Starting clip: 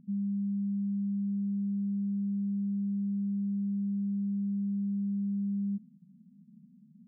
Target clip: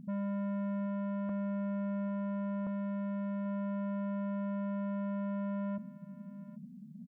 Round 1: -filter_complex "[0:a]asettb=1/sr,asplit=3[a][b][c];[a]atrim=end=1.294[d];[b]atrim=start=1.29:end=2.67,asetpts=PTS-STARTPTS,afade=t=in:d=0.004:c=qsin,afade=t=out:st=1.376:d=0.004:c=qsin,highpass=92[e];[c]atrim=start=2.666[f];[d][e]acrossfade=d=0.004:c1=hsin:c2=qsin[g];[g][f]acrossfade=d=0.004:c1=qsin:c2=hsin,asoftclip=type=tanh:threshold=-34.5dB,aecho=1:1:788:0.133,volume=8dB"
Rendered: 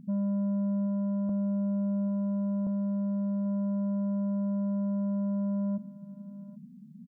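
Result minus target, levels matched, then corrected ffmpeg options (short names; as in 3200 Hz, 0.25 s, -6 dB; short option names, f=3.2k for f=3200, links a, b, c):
soft clip: distortion -6 dB
-filter_complex "[0:a]asettb=1/sr,asplit=3[a][b][c];[a]atrim=end=1.294[d];[b]atrim=start=1.29:end=2.67,asetpts=PTS-STARTPTS,afade=t=in:d=0.004:c=qsin,afade=t=out:st=1.376:d=0.004:c=qsin,highpass=92[e];[c]atrim=start=2.666[f];[d][e]acrossfade=d=0.004:c1=hsin:c2=qsin[g];[g][f]acrossfade=d=0.004:c1=qsin:c2=hsin,asoftclip=type=tanh:threshold=-42dB,aecho=1:1:788:0.133,volume=8dB"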